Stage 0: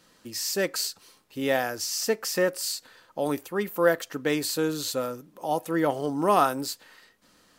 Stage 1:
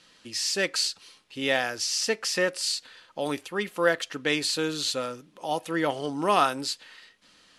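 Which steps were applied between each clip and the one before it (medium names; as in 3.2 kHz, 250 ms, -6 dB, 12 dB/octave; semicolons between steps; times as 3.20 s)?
elliptic low-pass 11 kHz, stop band 80 dB; peaking EQ 3 kHz +10 dB 1.7 oct; trim -2 dB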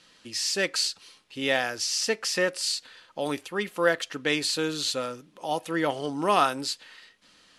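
no audible change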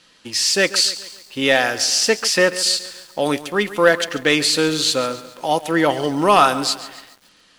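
waveshaping leveller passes 1; bit-crushed delay 140 ms, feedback 55%, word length 7-bit, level -15 dB; trim +6 dB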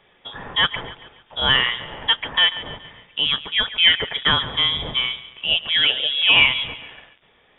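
frequency inversion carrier 3.6 kHz; trim -1.5 dB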